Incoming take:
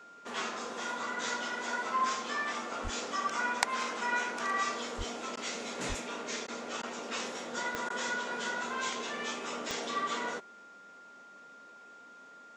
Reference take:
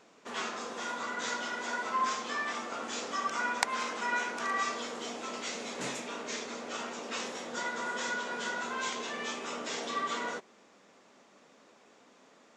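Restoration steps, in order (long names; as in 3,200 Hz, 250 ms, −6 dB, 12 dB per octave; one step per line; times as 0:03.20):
click removal
notch filter 1,400 Hz, Q 30
0:02.83–0:02.95: high-pass filter 140 Hz 24 dB per octave
0:04.97–0:05.09: high-pass filter 140 Hz 24 dB per octave
0:05.88–0:06.00: high-pass filter 140 Hz 24 dB per octave
repair the gap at 0:05.36/0:06.47/0:06.82/0:07.89, 10 ms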